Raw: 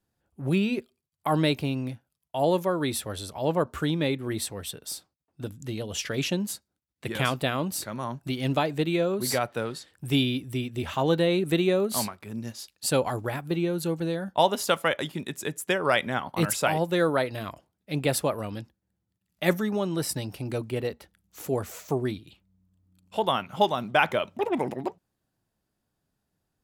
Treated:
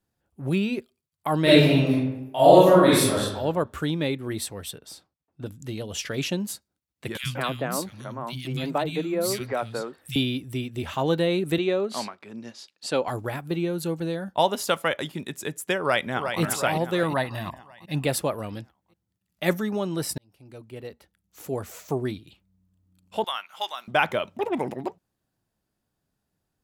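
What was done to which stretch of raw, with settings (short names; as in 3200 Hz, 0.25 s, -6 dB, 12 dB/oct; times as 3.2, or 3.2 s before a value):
1.42–3.2 reverb throw, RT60 0.94 s, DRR -10 dB
4.78–5.46 LPF 2800 Hz 6 dB/oct
7.17–10.16 three bands offset in time highs, lows, mids 60/180 ms, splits 200/2100 Hz
11.58–13.08 BPF 240–5300 Hz
15.79–16.41 echo throw 0.36 s, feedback 55%, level -7 dB
17.03–18.05 comb 1.1 ms, depth 60%
20.18–21.95 fade in linear
23.24–23.88 HPF 1300 Hz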